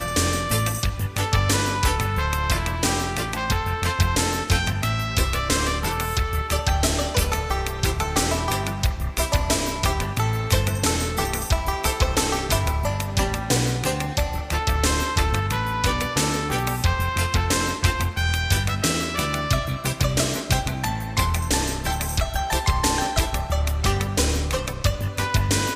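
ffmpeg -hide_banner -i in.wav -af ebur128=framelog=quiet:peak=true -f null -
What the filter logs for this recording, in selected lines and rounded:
Integrated loudness:
  I:         -22.9 LUFS
  Threshold: -32.9 LUFS
Loudness range:
  LRA:         0.9 LU
  Threshold: -42.9 LUFS
  LRA low:   -23.3 LUFS
  LRA high:  -22.4 LUFS
True peak:
  Peak:       -4.3 dBFS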